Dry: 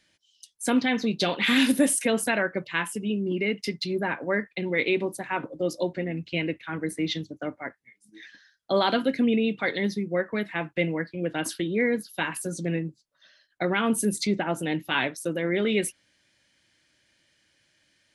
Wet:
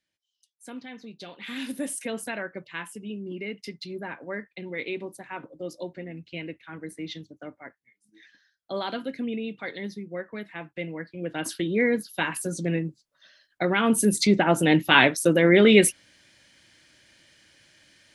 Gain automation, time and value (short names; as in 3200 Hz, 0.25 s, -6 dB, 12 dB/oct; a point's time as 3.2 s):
1.32 s -17 dB
1.98 s -8 dB
10.84 s -8 dB
11.7 s +1.5 dB
13.72 s +1.5 dB
14.76 s +9 dB